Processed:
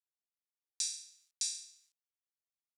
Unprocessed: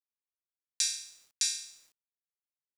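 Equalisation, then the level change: dynamic EQ 8600 Hz, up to +6 dB, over -49 dBFS, Q 6.2; band-pass 6200 Hz, Q 0.84; -6.0 dB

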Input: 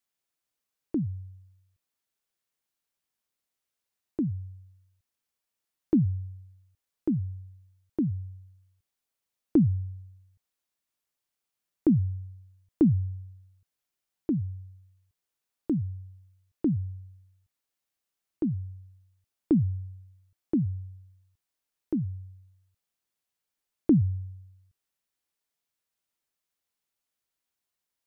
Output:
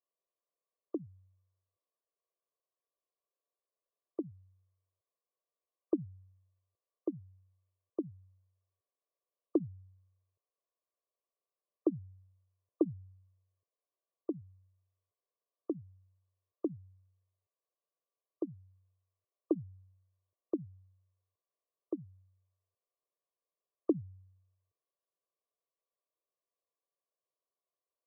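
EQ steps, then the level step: HPF 410 Hz 12 dB/oct; brick-wall FIR low-pass 1200 Hz; fixed phaser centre 860 Hz, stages 6; +4.5 dB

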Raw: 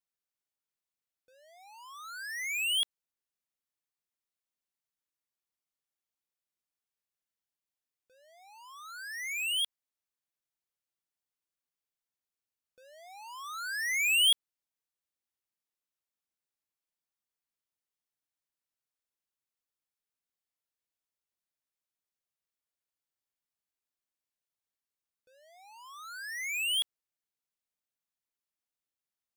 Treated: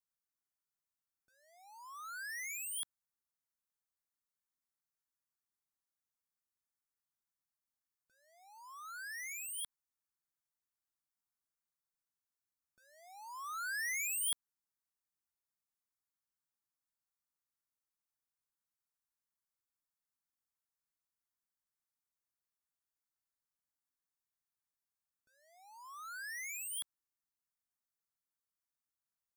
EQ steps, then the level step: fixed phaser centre 1200 Hz, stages 4; -1.5 dB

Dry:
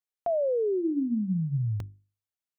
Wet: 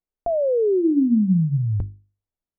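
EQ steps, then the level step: LPF 1100 Hz 6 dB/oct; tilt -4 dB/oct; bell 120 Hz -10.5 dB 0.77 oct; +3.5 dB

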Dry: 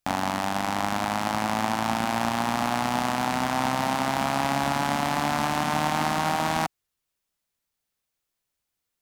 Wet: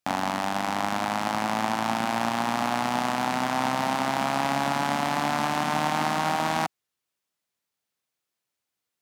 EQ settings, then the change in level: HPF 99 Hz; low shelf 130 Hz -4 dB; high shelf 8200 Hz -4.5 dB; 0.0 dB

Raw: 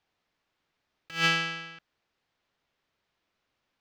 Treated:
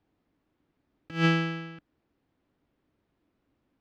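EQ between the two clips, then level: HPF 83 Hz 6 dB/oct; tilt -4 dB/oct; bell 290 Hz +10 dB 0.65 oct; 0.0 dB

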